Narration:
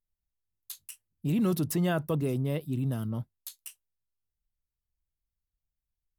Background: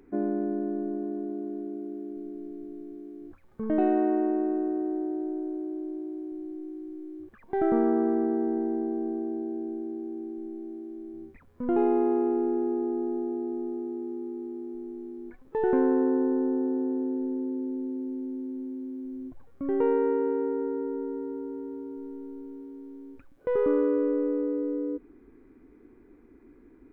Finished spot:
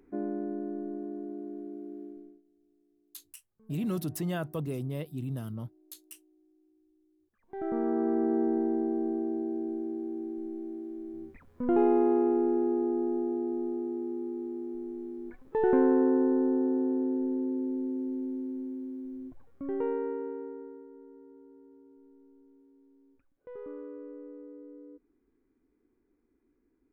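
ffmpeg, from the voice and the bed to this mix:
-filter_complex "[0:a]adelay=2450,volume=0.562[s0];[1:a]volume=15,afade=t=out:st=2.03:d=0.39:silence=0.0668344,afade=t=in:st=7.32:d=1.07:silence=0.0354813,afade=t=out:st=18.23:d=2.64:silence=0.11885[s1];[s0][s1]amix=inputs=2:normalize=0"

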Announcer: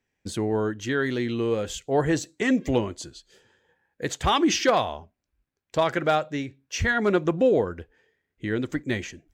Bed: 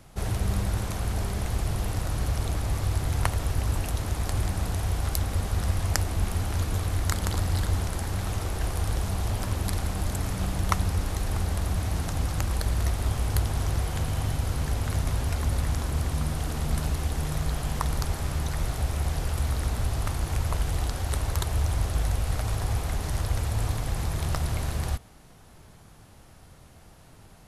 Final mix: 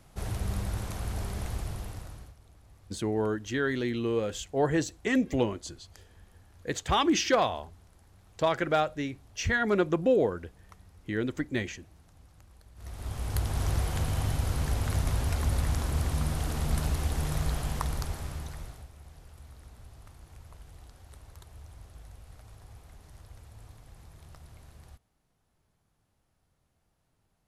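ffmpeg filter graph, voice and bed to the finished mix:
-filter_complex "[0:a]adelay=2650,volume=0.668[s0];[1:a]volume=12.6,afade=t=out:st=1.45:d=0.9:silence=0.0668344,afade=t=in:st=12.75:d=0.93:silence=0.0421697,afade=t=out:st=17.46:d=1.43:silence=0.0841395[s1];[s0][s1]amix=inputs=2:normalize=0"

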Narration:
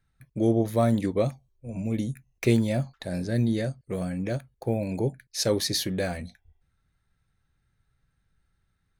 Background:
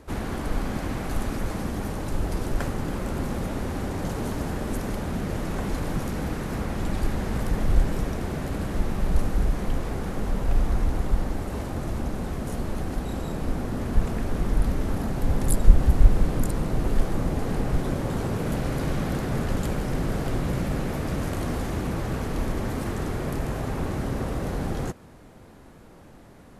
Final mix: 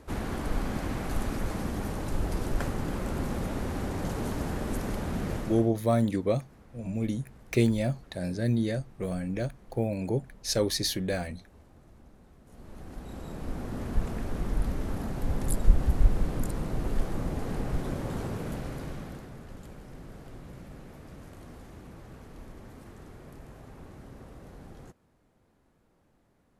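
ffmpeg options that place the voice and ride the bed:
-filter_complex "[0:a]adelay=5100,volume=0.794[s0];[1:a]volume=7.08,afade=t=out:st=5.32:d=0.39:silence=0.0707946,afade=t=in:st=12.45:d=1.33:silence=0.1,afade=t=out:st=18.18:d=1.18:silence=0.223872[s1];[s0][s1]amix=inputs=2:normalize=0"

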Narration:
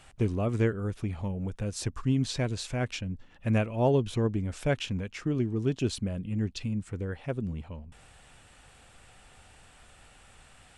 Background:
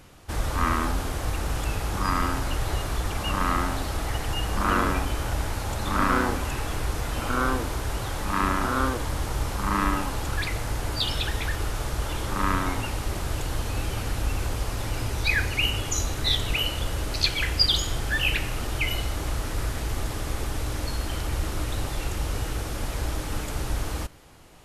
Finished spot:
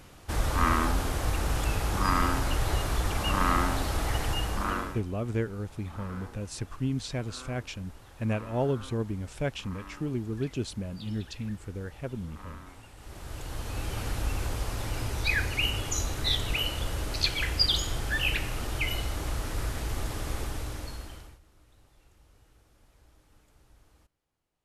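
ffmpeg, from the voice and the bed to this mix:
-filter_complex "[0:a]adelay=4750,volume=0.668[s0];[1:a]volume=7.94,afade=t=out:st=4.25:d=0.77:silence=0.0841395,afade=t=in:st=12.95:d=1.1:silence=0.11885,afade=t=out:st=20.36:d=1.03:silence=0.0375837[s1];[s0][s1]amix=inputs=2:normalize=0"

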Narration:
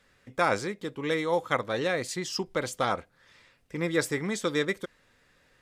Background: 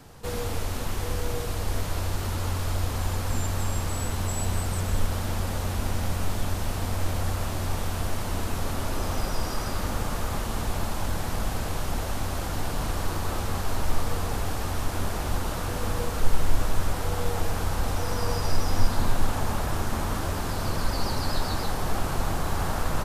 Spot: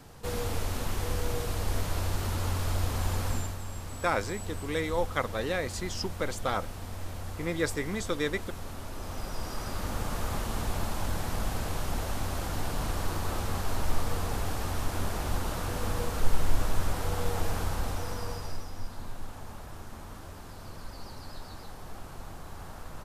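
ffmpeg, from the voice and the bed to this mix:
-filter_complex "[0:a]adelay=3650,volume=0.708[s0];[1:a]volume=2,afade=t=out:st=3.26:d=0.32:silence=0.354813,afade=t=in:st=8.94:d=1.34:silence=0.398107,afade=t=out:st=17.55:d=1.16:silence=0.223872[s1];[s0][s1]amix=inputs=2:normalize=0"

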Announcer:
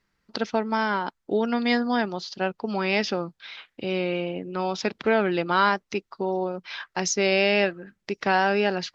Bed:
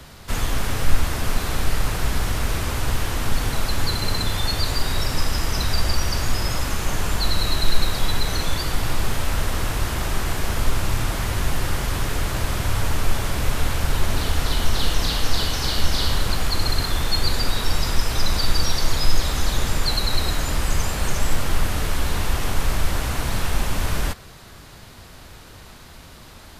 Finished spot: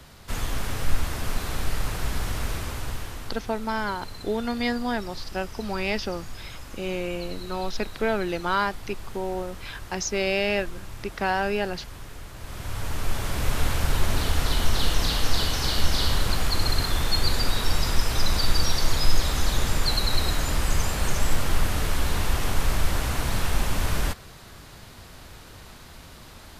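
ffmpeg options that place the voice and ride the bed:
-filter_complex "[0:a]adelay=2950,volume=0.668[s0];[1:a]volume=2.99,afade=t=out:st=2.44:d=0.98:silence=0.266073,afade=t=in:st=12.37:d=1.26:silence=0.177828[s1];[s0][s1]amix=inputs=2:normalize=0"

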